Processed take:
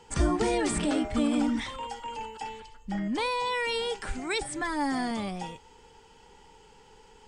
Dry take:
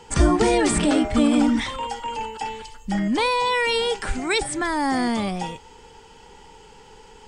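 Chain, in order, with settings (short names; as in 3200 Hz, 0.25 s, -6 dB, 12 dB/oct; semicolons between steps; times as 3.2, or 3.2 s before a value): 2.6–3.15 LPF 3500 Hz 6 dB/oct; 4.55–5.11 comb 6.9 ms, depth 52%; gain -8 dB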